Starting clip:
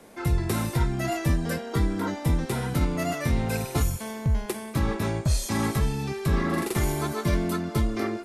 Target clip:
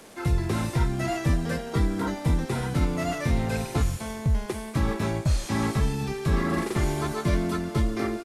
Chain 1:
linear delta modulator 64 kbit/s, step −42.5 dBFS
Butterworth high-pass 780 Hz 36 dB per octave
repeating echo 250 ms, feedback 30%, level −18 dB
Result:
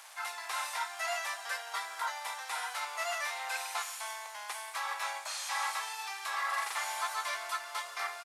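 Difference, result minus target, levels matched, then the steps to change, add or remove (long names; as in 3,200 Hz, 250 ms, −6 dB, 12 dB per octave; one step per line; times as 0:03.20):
1,000 Hz band +7.5 dB
remove: Butterworth high-pass 780 Hz 36 dB per octave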